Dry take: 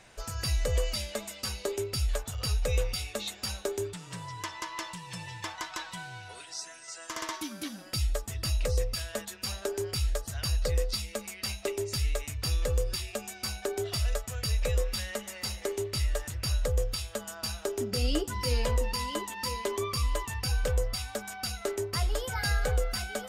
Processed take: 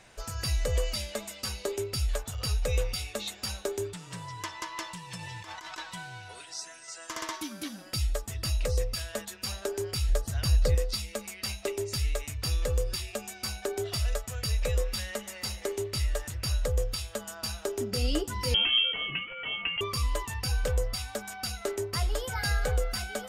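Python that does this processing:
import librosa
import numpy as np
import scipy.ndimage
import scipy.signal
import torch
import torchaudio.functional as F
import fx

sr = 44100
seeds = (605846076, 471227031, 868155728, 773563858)

y = fx.over_compress(x, sr, threshold_db=-42.0, ratio=-1.0, at=(5.16, 5.78))
y = fx.low_shelf(y, sr, hz=470.0, db=6.0, at=(10.09, 10.75))
y = fx.freq_invert(y, sr, carrier_hz=3200, at=(18.54, 19.81))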